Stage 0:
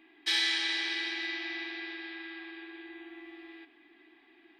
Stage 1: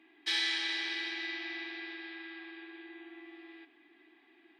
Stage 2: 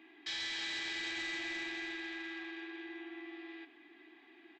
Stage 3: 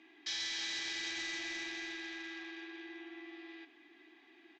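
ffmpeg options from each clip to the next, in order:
-af "highpass=f=97:w=0.5412,highpass=f=97:w=1.3066,highshelf=f=9300:g=-7.5,volume=0.75"
-af "alimiter=level_in=2:limit=0.0631:level=0:latency=1,volume=0.501,aresample=16000,asoftclip=type=tanh:threshold=0.0119,aresample=44100,volume=1.5"
-af "lowpass=f=6100:t=q:w=3.3,volume=0.75"

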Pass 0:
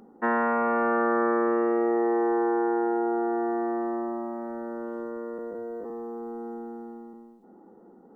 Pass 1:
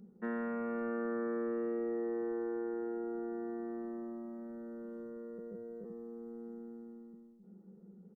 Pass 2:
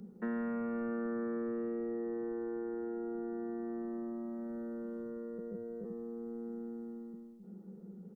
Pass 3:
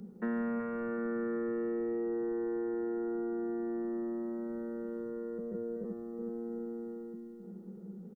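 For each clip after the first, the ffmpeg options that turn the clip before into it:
-af "firequalizer=gain_entry='entry(120,0);entry(190,15);entry(270,-17);entry(390,-2);entry(820,-19);entry(1400,-11);entry(4200,-6)':delay=0.05:min_phase=1,volume=0.531"
-filter_complex "[0:a]acrossover=split=220[s0][s1];[s1]acompressor=threshold=0.00355:ratio=2.5[s2];[s0][s2]amix=inputs=2:normalize=0,volume=2"
-af "aecho=1:1:375|750|1125|1500|1875:0.335|0.147|0.0648|0.0285|0.0126,volume=1.33"

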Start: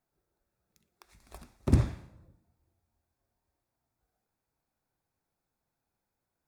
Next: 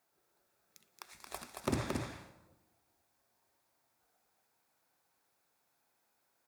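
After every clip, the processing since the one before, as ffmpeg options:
-af "highpass=f=690:p=1,acompressor=threshold=0.01:ratio=3,aecho=1:1:225:0.631,volume=2.66"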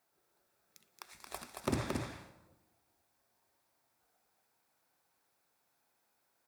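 -af "bandreject=f=6700:w=28"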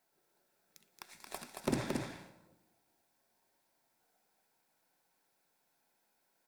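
-af "aeval=exprs='if(lt(val(0),0),0.708*val(0),val(0))':c=same,lowshelf=f=120:t=q:w=1.5:g=-7,bandreject=f=1200:w=6.8,volume=1.19"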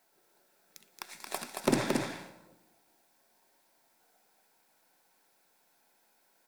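-af "equalizer=f=63:w=0.73:g=-13,volume=2.51"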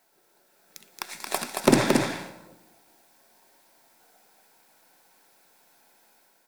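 -af "dynaudnorm=f=440:g=3:m=1.78,volume=1.58"

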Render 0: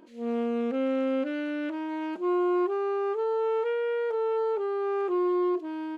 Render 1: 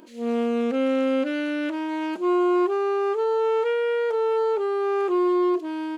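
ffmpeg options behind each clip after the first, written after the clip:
-af "highshelf=f=3700:g=10,volume=1.68"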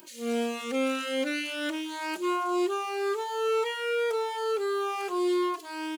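-filter_complex "[0:a]crystalizer=i=9:c=0,asplit=2[s0][s1];[s1]adelay=2.7,afreqshift=-1.9[s2];[s0][s2]amix=inputs=2:normalize=1,volume=0.562"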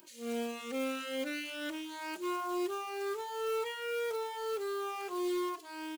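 -af "acrusher=bits=4:mode=log:mix=0:aa=0.000001,volume=0.422"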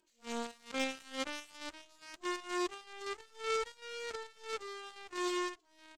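-af "afftfilt=real='re*between(b*sr/4096,200,8300)':imag='im*between(b*sr/4096,200,8300)':win_size=4096:overlap=0.75,acompressor=mode=upward:threshold=0.00251:ratio=2.5,aeval=exprs='0.0531*(cos(1*acos(clip(val(0)/0.0531,-1,1)))-cos(1*PI/2))+0.0188*(cos(3*acos(clip(val(0)/0.0531,-1,1)))-cos(3*PI/2))+0.000473*(cos(8*acos(clip(val(0)/0.0531,-1,1)))-cos(8*PI/2))':c=same,volume=1.58"

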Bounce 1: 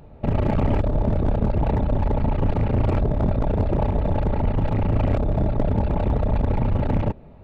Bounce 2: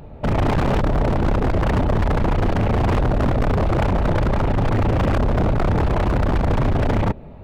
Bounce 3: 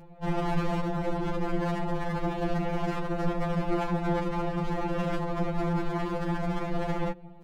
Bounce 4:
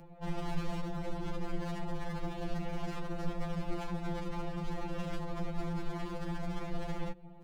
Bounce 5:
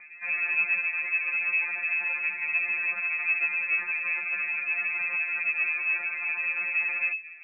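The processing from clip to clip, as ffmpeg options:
-af "aeval=exprs='0.106*(abs(mod(val(0)/0.106+3,4)-2)-1)':c=same,volume=2.11"
-af "afftfilt=real='re*2.83*eq(mod(b,8),0)':imag='im*2.83*eq(mod(b,8),0)':win_size=2048:overlap=0.75,volume=0.501"
-filter_complex "[0:a]acrossover=split=130|3000[s0][s1][s2];[s1]acompressor=threshold=0.00794:ratio=2[s3];[s0][s3][s2]amix=inputs=3:normalize=0,volume=0.708"
-af "lowpass=f=2200:t=q:w=0.5098,lowpass=f=2200:t=q:w=0.6013,lowpass=f=2200:t=q:w=0.9,lowpass=f=2200:t=q:w=2.563,afreqshift=-2600,volume=1.78"

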